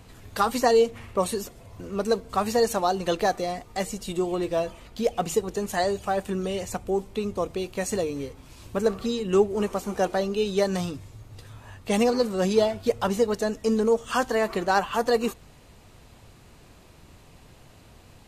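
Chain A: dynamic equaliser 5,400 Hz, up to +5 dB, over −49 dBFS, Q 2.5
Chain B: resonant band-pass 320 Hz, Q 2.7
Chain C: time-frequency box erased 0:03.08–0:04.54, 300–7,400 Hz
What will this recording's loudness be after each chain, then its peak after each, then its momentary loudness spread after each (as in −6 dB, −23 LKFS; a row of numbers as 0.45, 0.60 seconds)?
−26.0, −33.5, −26.0 LKFS; −7.5, −14.5, −8.0 dBFS; 10, 11, 16 LU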